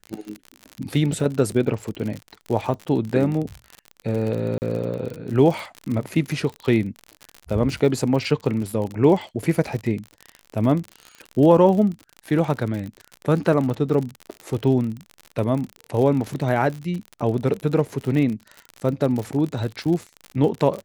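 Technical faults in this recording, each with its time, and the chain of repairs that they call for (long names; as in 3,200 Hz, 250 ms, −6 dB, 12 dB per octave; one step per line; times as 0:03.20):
surface crackle 55 per second −27 dBFS
0:04.58–0:04.62: drop-out 39 ms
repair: click removal
repair the gap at 0:04.58, 39 ms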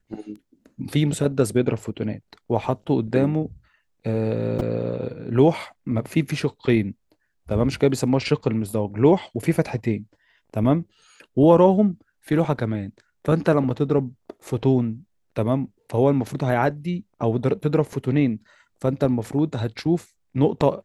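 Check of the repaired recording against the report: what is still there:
none of them is left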